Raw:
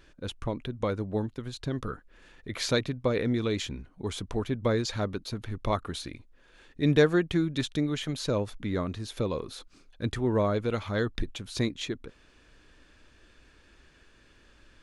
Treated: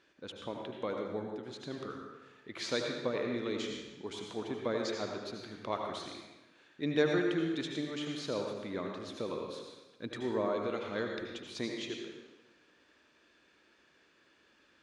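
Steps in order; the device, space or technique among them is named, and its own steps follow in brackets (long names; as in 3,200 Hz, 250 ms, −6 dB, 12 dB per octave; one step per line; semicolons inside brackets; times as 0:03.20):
supermarket ceiling speaker (band-pass filter 230–6,600 Hz; convolution reverb RT60 1.1 s, pre-delay 72 ms, DRR 1.5 dB)
level −7 dB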